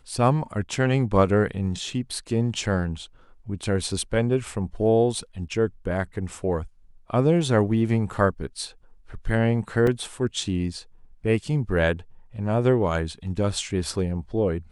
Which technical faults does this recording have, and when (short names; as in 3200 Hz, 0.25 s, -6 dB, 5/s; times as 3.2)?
9.87 gap 3.1 ms